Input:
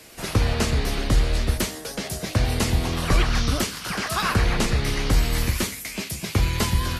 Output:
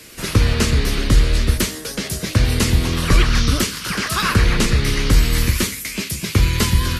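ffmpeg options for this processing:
-af "equalizer=f=740:t=o:w=0.69:g=-10.5,volume=2"

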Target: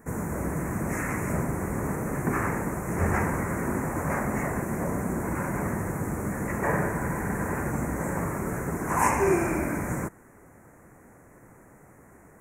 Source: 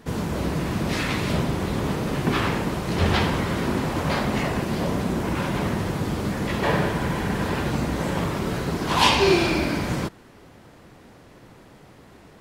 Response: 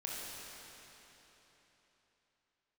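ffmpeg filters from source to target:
-af "asuperstop=centerf=3800:order=8:qfactor=0.81,highshelf=f=2200:g=7,volume=0.596"

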